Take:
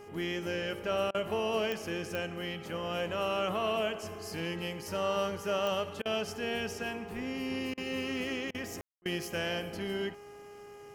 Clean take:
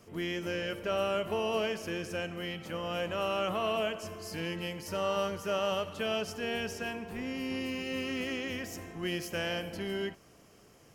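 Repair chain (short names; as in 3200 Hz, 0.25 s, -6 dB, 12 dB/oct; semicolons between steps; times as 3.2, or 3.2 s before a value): de-click; de-hum 409.9 Hz, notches 7; room tone fill 8.81–9.02; interpolate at 1.11/6.02/7.74/8.51/9.02, 34 ms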